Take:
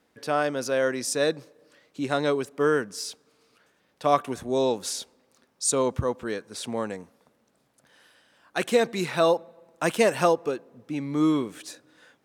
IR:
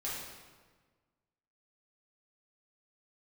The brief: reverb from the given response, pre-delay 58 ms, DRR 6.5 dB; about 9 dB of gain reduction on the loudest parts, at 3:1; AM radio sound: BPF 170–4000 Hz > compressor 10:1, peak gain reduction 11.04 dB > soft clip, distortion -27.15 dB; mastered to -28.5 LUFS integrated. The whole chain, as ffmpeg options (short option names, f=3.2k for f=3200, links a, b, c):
-filter_complex "[0:a]acompressor=threshold=-28dB:ratio=3,asplit=2[a][b];[1:a]atrim=start_sample=2205,adelay=58[c];[b][c]afir=irnorm=-1:irlink=0,volume=-9.5dB[d];[a][d]amix=inputs=2:normalize=0,highpass=170,lowpass=4k,acompressor=threshold=-34dB:ratio=10,asoftclip=threshold=-23.5dB,volume=11.5dB"